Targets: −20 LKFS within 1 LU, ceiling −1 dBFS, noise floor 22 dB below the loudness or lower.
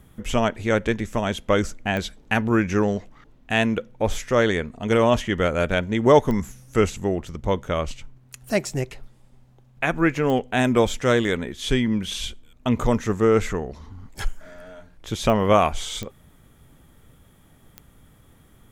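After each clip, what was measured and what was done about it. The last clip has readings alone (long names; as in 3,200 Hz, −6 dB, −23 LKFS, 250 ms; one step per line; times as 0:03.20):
number of clicks 6; integrated loudness −23.0 LKFS; sample peak −3.0 dBFS; target loudness −20.0 LKFS
→ click removal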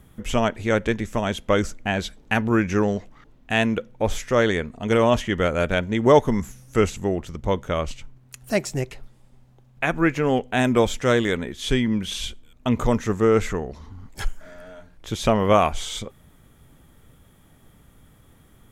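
number of clicks 0; integrated loudness −23.0 LKFS; sample peak −3.0 dBFS; target loudness −20.0 LKFS
→ level +3 dB
brickwall limiter −1 dBFS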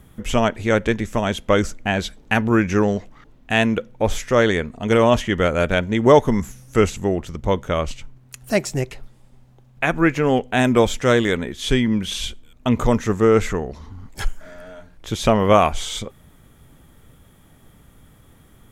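integrated loudness −20.0 LKFS; sample peak −1.0 dBFS; background noise floor −51 dBFS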